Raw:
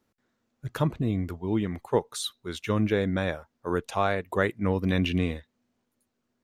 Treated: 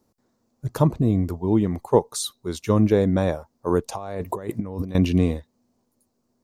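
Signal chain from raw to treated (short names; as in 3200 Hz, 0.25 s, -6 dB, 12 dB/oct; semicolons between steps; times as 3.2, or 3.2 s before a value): 3.95–4.95 negative-ratio compressor -37 dBFS, ratio -1; band shelf 2200 Hz -10.5 dB; gain +7 dB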